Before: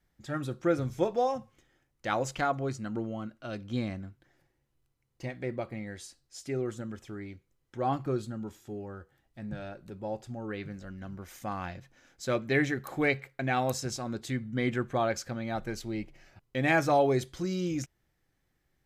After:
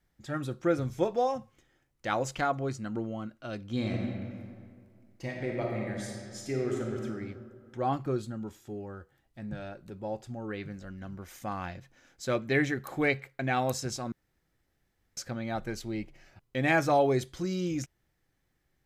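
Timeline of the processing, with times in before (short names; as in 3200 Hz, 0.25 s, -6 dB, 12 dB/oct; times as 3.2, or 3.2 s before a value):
3.72–7.04 reverb throw, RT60 2.1 s, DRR -1 dB
14.12–15.17 room tone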